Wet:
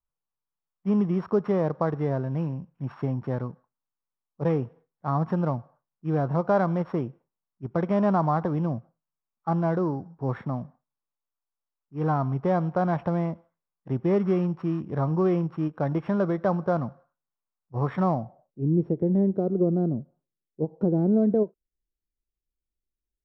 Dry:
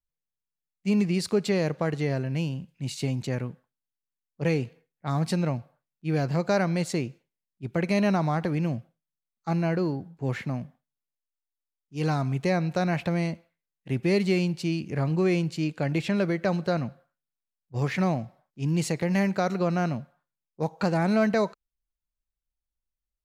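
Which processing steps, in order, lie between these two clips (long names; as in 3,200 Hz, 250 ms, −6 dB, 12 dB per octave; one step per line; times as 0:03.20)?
samples sorted by size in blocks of 8 samples
low-pass filter sweep 1,100 Hz → 380 Hz, 0:18.13–0:18.70
every ending faded ahead of time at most 490 dB per second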